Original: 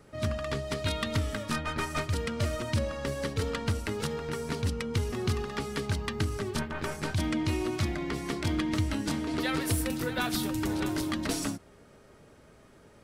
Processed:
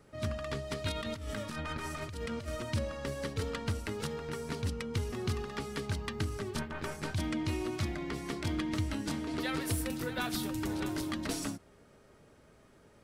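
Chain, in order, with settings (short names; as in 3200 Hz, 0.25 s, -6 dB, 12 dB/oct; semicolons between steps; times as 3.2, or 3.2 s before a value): 0.92–2.48 negative-ratio compressor -34 dBFS, ratio -1; gain -4.5 dB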